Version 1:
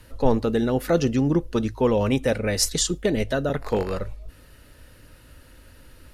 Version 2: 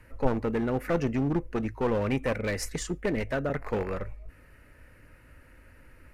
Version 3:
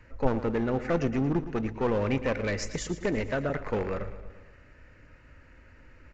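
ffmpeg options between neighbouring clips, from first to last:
-af "highshelf=f=2.8k:t=q:w=3:g=-7.5,aeval=exprs='clip(val(0),-1,0.0841)':c=same,volume=-5dB"
-filter_complex "[0:a]asplit=2[a][b];[b]aecho=0:1:114|228|342|456|570|684:0.211|0.125|0.0736|0.0434|0.0256|0.0151[c];[a][c]amix=inputs=2:normalize=0,aresample=16000,aresample=44100"

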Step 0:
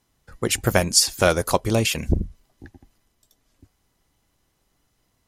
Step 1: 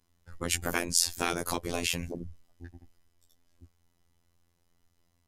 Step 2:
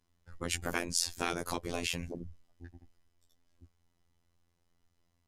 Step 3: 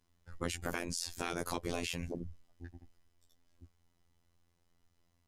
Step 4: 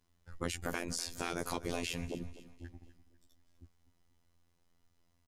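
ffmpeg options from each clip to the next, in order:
-af "afftfilt=real='hypot(re,im)*cos(PI*b)':imag='0':win_size=2048:overlap=0.75,lowshelf=f=83:g=10.5,afftfilt=real='re*lt(hypot(re,im),0.355)':imag='im*lt(hypot(re,im),0.355)':win_size=1024:overlap=0.75,volume=-3.5dB"
-af "highshelf=f=11k:g=-10.5,volume=-3.5dB"
-af "alimiter=limit=-19.5dB:level=0:latency=1:release=137,volume=1dB"
-af "aecho=1:1:248|496|744|992:0.158|0.065|0.0266|0.0109"

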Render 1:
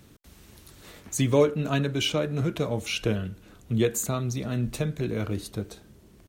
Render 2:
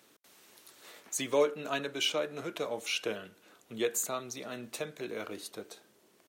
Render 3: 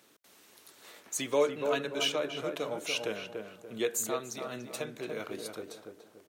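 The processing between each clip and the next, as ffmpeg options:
-af "highpass=460,volume=-3dB"
-filter_complex "[0:a]asplit=2[a][b];[b]adelay=289,lowpass=f=1.4k:p=1,volume=-4.5dB,asplit=2[c][d];[d]adelay=289,lowpass=f=1.4k:p=1,volume=0.38,asplit=2[e][f];[f]adelay=289,lowpass=f=1.4k:p=1,volume=0.38,asplit=2[g][h];[h]adelay=289,lowpass=f=1.4k:p=1,volume=0.38,asplit=2[i][j];[j]adelay=289,lowpass=f=1.4k:p=1,volume=0.38[k];[a][c][e][g][i][k]amix=inputs=6:normalize=0"

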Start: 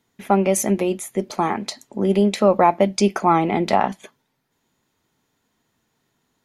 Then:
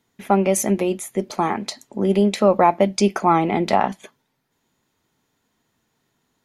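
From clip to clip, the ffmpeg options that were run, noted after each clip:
-af anull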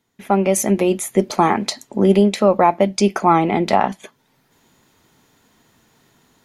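-af "dynaudnorm=f=230:g=3:m=14dB,volume=-1dB"

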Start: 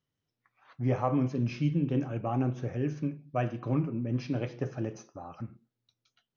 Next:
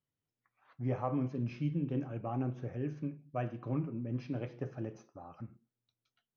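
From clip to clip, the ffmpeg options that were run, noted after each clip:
-af "highshelf=f=4.7k:g=-11.5,volume=-6dB"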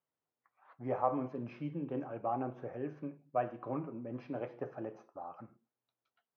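-af "bandpass=f=820:t=q:w=1.1:csg=0,volume=6.5dB"

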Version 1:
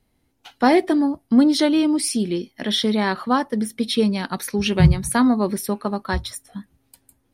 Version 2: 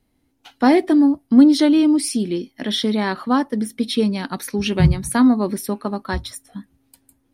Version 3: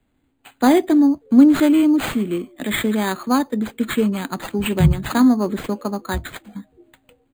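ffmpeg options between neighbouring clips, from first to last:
-af "equalizer=f=280:t=o:w=0.38:g=7,volume=-1dB"
-filter_complex "[0:a]acrossover=split=160|860[a][b][c];[a]asplit=5[d][e][f][g][h];[e]adelay=316,afreqshift=140,volume=-16dB[i];[f]adelay=632,afreqshift=280,volume=-22.9dB[j];[g]adelay=948,afreqshift=420,volume=-29.9dB[k];[h]adelay=1264,afreqshift=560,volume=-36.8dB[l];[d][i][j][k][l]amix=inputs=5:normalize=0[m];[c]acrusher=samples=8:mix=1:aa=0.000001[n];[m][b][n]amix=inputs=3:normalize=0"

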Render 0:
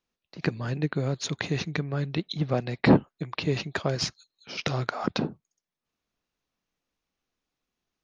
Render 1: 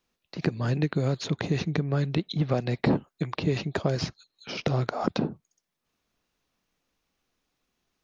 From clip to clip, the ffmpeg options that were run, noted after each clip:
-filter_complex "[0:a]acrossover=split=820|4300[a][b][c];[a]acompressor=threshold=-29dB:ratio=4[d];[b]acompressor=threshold=-44dB:ratio=4[e];[c]acompressor=threshold=-53dB:ratio=4[f];[d][e][f]amix=inputs=3:normalize=0,volume=6.5dB"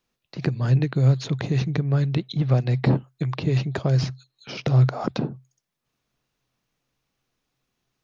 -af "equalizer=f=130:w=7.2:g=13.5"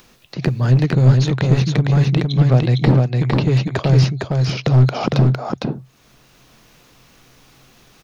-af "acompressor=mode=upward:threshold=-41dB:ratio=2.5,aeval=exprs='clip(val(0),-1,0.141)':c=same,aecho=1:1:457:0.708,volume=6.5dB"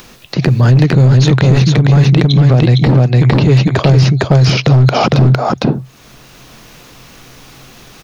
-af "alimiter=level_in=13dB:limit=-1dB:release=50:level=0:latency=1,volume=-1dB"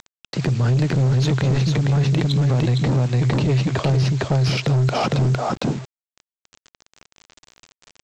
-af "aresample=16000,acrusher=bits=4:mix=0:aa=0.000001,aresample=44100,asoftclip=type=tanh:threshold=-5dB,volume=-7.5dB"

